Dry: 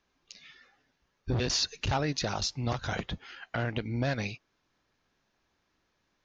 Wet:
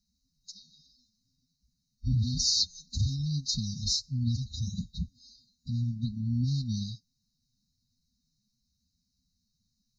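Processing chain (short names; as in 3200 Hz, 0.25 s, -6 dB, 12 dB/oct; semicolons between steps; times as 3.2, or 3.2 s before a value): time stretch by phase-locked vocoder 1.6×; brick-wall FIR band-stop 260–3700 Hz; gain +3.5 dB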